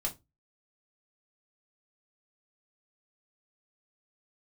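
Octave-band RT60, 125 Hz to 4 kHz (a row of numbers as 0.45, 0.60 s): 0.35, 0.30, 0.25, 0.20, 0.15, 0.15 s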